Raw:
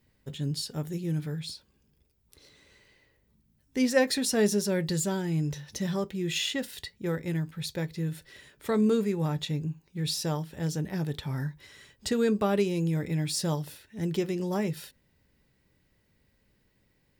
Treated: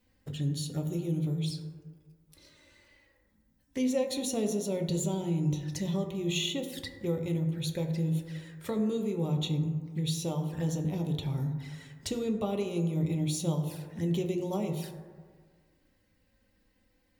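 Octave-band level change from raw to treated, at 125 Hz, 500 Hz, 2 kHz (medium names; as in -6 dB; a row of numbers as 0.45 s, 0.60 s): +0.5 dB, -4.0 dB, -9.0 dB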